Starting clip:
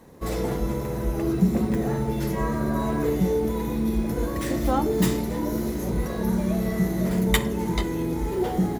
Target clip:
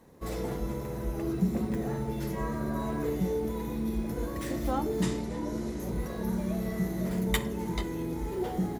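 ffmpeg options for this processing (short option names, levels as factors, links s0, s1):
-filter_complex "[0:a]asettb=1/sr,asplit=3[s0][s1][s2];[s0]atrim=end=5.024[s3];[s1]atrim=start=5.02:end=5.8,asetpts=PTS-STARTPTS,afade=t=in:d=0.004:c=qsin,afade=t=out:st=0.776:d=0.004:c=qsin,lowpass=f=9600:w=0.5412,lowpass=f=9600:w=1.3066[s4];[s2]atrim=start=5.796[s5];[s3][s4]acrossfade=d=0.004:c1=hsin:c2=qsin[s6];[s6][s5]acrossfade=d=0.004:c1=qsin:c2=hsin,volume=0.447"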